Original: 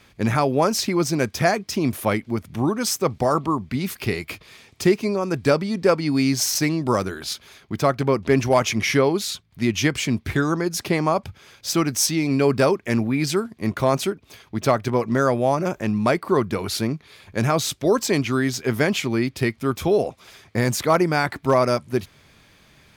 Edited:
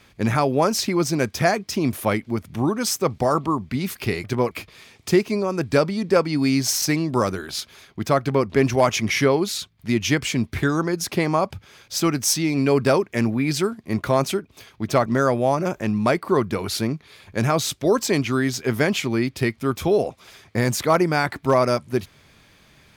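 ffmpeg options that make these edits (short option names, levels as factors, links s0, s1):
-filter_complex "[0:a]asplit=4[s0][s1][s2][s3];[s0]atrim=end=4.242[s4];[s1]atrim=start=14.788:end=15.062[s5];[s2]atrim=start=4.238:end=14.792[s6];[s3]atrim=start=15.058[s7];[s4][s5]acrossfade=d=0.004:c1=hsin:c2=hsin[s8];[s8][s6]acrossfade=d=0.004:c1=hsin:c2=hsin[s9];[s9][s7]acrossfade=d=0.004:c1=hsin:c2=hsin"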